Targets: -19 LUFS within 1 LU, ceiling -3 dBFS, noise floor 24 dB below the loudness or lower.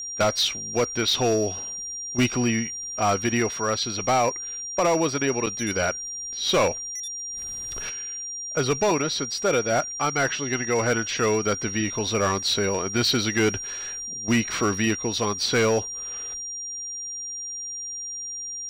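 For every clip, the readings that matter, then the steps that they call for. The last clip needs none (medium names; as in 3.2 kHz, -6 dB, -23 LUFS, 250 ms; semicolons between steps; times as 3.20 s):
clipped samples 1.0%; clipping level -15.5 dBFS; steady tone 5.7 kHz; tone level -31 dBFS; loudness -24.5 LUFS; peak level -15.5 dBFS; loudness target -19.0 LUFS
-> clip repair -15.5 dBFS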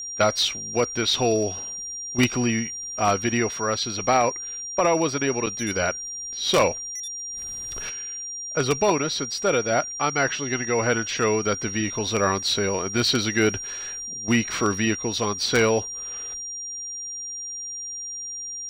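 clipped samples 0.0%; steady tone 5.7 kHz; tone level -31 dBFS
-> band-stop 5.7 kHz, Q 30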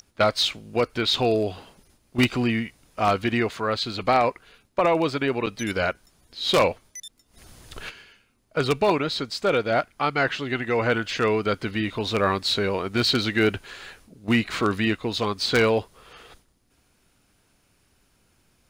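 steady tone not found; loudness -24.0 LUFS; peak level -6.0 dBFS; loudness target -19.0 LUFS
-> trim +5 dB; peak limiter -3 dBFS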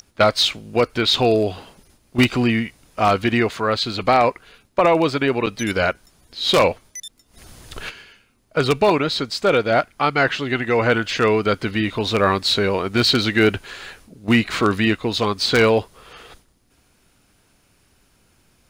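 loudness -19.0 LUFS; peak level -3.0 dBFS; noise floor -60 dBFS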